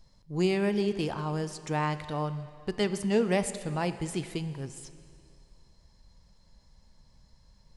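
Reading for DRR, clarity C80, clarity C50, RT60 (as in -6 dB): 11.0 dB, 13.0 dB, 12.0 dB, 2.3 s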